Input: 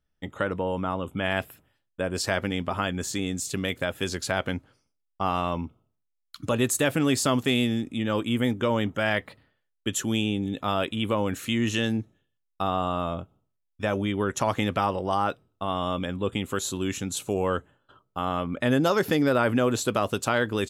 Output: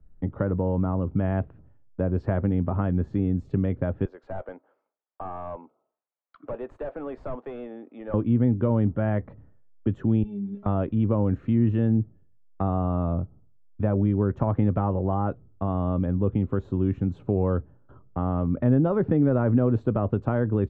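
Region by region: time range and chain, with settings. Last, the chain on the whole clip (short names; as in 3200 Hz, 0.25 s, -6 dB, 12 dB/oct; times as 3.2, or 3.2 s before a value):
4.05–8.14 ladder high-pass 450 Hz, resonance 25% + hard clip -31.5 dBFS + mismatched tape noise reduction encoder only
10.23–10.66 switching spikes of -33 dBFS + low shelf 370 Hz -6.5 dB + metallic resonator 200 Hz, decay 0.26 s, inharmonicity 0.008
whole clip: LPF 1400 Hz 12 dB/oct; tilt -4.5 dB/oct; three-band squash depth 40%; gain -5 dB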